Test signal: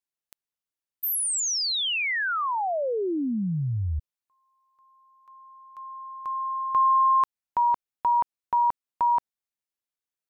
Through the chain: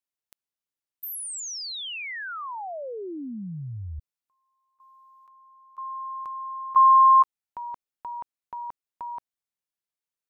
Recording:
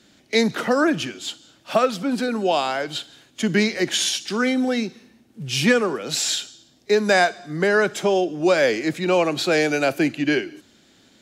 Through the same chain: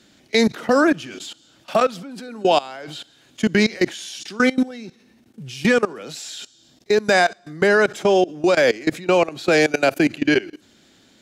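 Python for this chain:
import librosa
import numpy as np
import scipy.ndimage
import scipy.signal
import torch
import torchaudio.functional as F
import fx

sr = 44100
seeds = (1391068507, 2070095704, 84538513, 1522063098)

y = fx.level_steps(x, sr, step_db=20)
y = F.gain(torch.from_numpy(y), 5.5).numpy()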